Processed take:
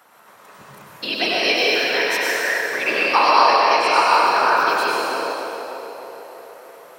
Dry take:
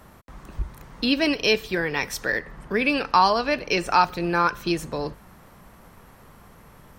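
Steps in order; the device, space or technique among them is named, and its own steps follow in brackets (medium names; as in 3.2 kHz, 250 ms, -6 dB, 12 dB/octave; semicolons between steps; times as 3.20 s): whispering ghost (whisper effect; high-pass 590 Hz 12 dB/octave; reverberation RT60 3.0 s, pre-delay 92 ms, DRR -6 dB); band-passed feedback delay 302 ms, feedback 72%, band-pass 530 Hz, level -7.5 dB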